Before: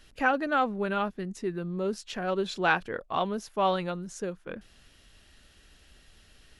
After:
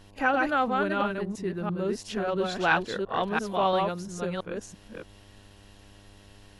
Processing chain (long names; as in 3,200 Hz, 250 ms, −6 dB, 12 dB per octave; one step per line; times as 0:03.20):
delay that plays each chunk backwards 339 ms, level −2.5 dB
hum with harmonics 100 Hz, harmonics 11, −55 dBFS −5 dB per octave
backwards echo 47 ms −21.5 dB